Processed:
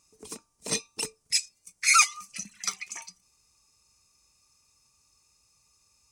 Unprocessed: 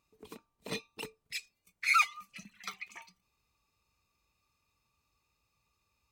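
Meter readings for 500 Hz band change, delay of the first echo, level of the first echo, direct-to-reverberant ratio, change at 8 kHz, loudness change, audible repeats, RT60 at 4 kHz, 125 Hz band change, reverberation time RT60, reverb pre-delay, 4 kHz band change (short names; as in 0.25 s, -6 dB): +4.5 dB, none, none, none, +20.5 dB, +6.0 dB, none, none, n/a, none, none, +11.5 dB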